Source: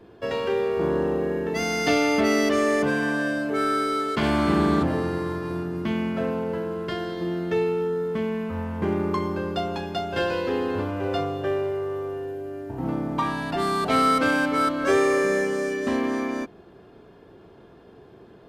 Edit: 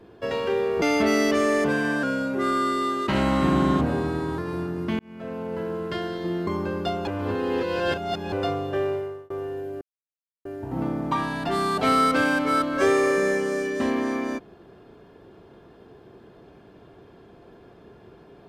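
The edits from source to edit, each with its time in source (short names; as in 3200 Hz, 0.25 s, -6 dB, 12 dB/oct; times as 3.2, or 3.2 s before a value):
0.82–2 cut
3.21–5.35 speed 91%
5.96–6.69 fade in
7.44–9.18 cut
9.78–11.03 reverse
11.63–12.01 fade out
12.52 insert silence 0.64 s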